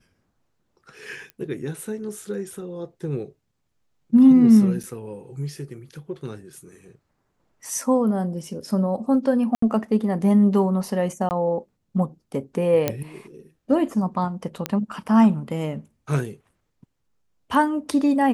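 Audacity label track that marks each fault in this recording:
1.300000	1.300000	pop -24 dBFS
4.830000	4.840000	gap 5.6 ms
9.550000	9.620000	gap 74 ms
11.290000	11.310000	gap 19 ms
12.880000	12.880000	pop -7 dBFS
14.660000	14.660000	pop -9 dBFS

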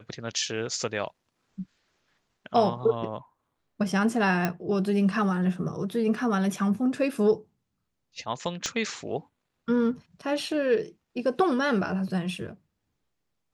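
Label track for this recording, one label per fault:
4.450000	4.450000	pop -12 dBFS
8.660000	8.660000	pop -16 dBFS

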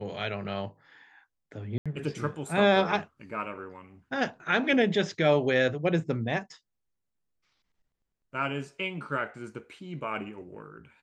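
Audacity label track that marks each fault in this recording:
1.780000	1.860000	gap 76 ms

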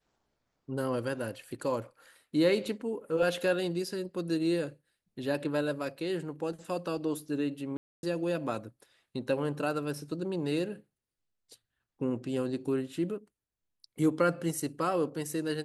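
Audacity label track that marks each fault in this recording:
7.770000	8.030000	gap 0.261 s

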